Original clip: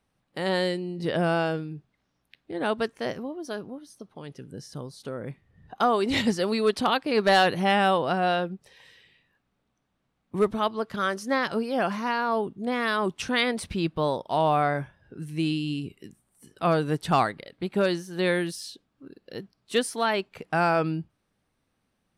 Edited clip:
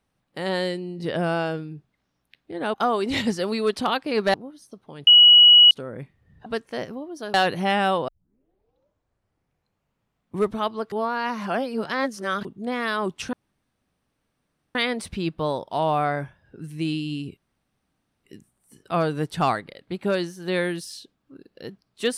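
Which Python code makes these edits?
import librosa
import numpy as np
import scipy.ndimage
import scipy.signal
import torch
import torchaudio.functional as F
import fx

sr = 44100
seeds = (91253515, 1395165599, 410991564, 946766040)

y = fx.edit(x, sr, fx.swap(start_s=2.74, length_s=0.88, other_s=5.74, other_length_s=1.6),
    fx.bleep(start_s=4.35, length_s=0.64, hz=2920.0, db=-8.0),
    fx.tape_start(start_s=8.08, length_s=2.3),
    fx.reverse_span(start_s=10.92, length_s=1.53),
    fx.insert_room_tone(at_s=13.33, length_s=1.42),
    fx.insert_room_tone(at_s=15.95, length_s=0.87), tone=tone)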